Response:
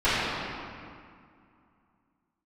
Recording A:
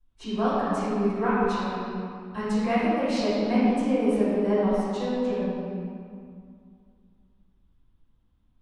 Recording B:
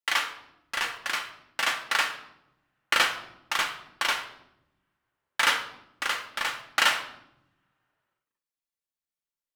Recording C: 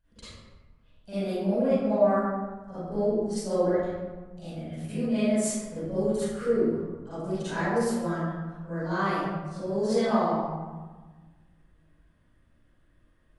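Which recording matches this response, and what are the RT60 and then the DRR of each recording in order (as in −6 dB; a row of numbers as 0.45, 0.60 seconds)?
A; 2.2, 0.85, 1.3 seconds; −18.5, 3.0, −16.0 decibels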